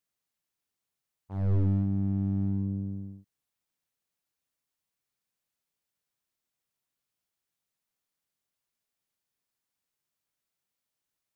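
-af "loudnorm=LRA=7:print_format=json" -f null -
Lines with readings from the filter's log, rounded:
"input_i" : "-29.5",
"input_tp" : "-18.1",
"input_lra" : "3.7",
"input_thresh" : "-40.7",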